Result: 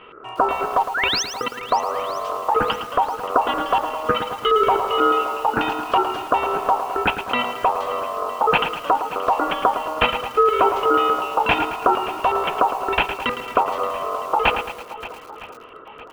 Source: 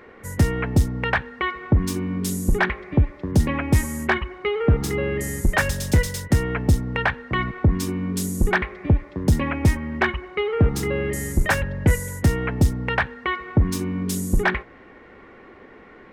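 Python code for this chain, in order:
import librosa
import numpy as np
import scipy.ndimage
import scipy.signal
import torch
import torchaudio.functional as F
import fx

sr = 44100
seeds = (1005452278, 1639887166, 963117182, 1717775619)

y = fx.peak_eq(x, sr, hz=400.0, db=7.0, octaves=0.42)
y = fx.level_steps(y, sr, step_db=23, at=(0.83, 1.59))
y = fx.filter_lfo_lowpass(y, sr, shape='square', hz=4.1, low_hz=560.0, high_hz=2200.0, q=3.0)
y = y * np.sin(2.0 * np.pi * 860.0 * np.arange(len(y)) / sr)
y = fx.spec_paint(y, sr, seeds[0], shape='rise', start_s=0.94, length_s=0.29, low_hz=1300.0, high_hz=6500.0, level_db=-22.0)
y = fx.echo_swing(y, sr, ms=960, ratio=1.5, feedback_pct=35, wet_db=-16.0)
y = fx.echo_crushed(y, sr, ms=110, feedback_pct=55, bits=6, wet_db=-9)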